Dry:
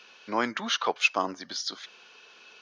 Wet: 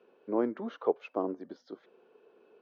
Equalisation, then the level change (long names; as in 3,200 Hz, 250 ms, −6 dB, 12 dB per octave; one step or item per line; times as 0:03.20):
resonant band-pass 410 Hz, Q 2.2
spectral tilt −3 dB per octave
+2.0 dB